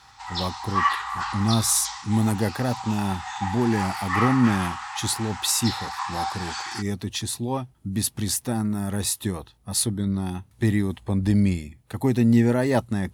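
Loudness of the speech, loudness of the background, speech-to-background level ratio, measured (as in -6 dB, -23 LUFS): -25.0 LUFS, -29.5 LUFS, 4.5 dB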